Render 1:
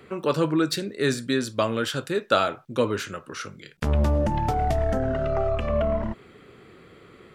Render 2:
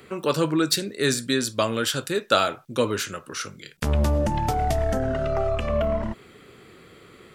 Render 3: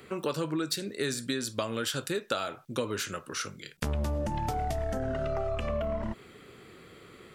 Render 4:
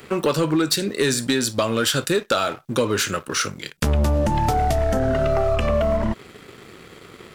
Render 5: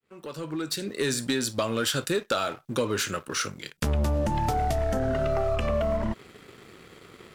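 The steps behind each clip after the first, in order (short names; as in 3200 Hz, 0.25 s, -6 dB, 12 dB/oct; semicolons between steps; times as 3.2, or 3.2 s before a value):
high shelf 4100 Hz +10.5 dB
compressor 6:1, threshold -25 dBFS, peak gain reduction 11.5 dB; gain -2.5 dB
sample leveller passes 2; gain +4.5 dB
opening faded in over 1.15 s; gain -6 dB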